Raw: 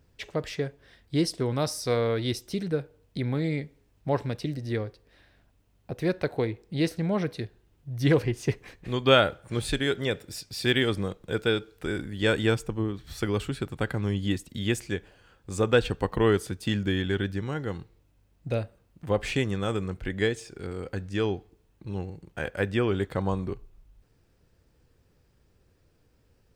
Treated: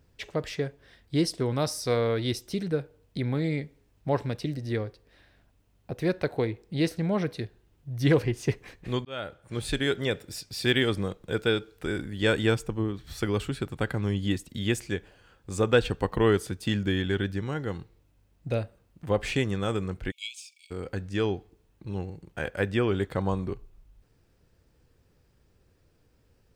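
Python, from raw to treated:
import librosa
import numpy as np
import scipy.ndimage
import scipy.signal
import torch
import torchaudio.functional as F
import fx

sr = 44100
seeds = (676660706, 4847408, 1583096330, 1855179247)

y = fx.brickwall_highpass(x, sr, low_hz=2200.0, at=(20.1, 20.7), fade=0.02)
y = fx.edit(y, sr, fx.fade_in_span(start_s=9.05, length_s=0.77), tone=tone)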